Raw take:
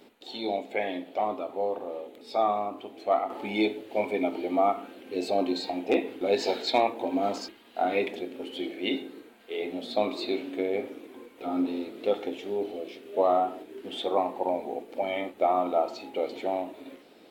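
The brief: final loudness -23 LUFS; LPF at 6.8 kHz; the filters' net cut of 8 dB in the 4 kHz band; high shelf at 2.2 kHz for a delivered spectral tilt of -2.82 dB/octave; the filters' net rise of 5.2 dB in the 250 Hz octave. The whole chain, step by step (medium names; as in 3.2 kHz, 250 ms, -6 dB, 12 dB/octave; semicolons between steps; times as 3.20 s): low-pass 6.8 kHz; peaking EQ 250 Hz +6.5 dB; treble shelf 2.2 kHz -6.5 dB; peaking EQ 4 kHz -3.5 dB; trim +5 dB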